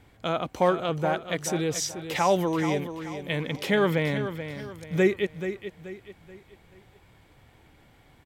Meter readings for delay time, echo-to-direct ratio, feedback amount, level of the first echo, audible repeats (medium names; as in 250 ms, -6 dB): 431 ms, -9.5 dB, 38%, -10.0 dB, 3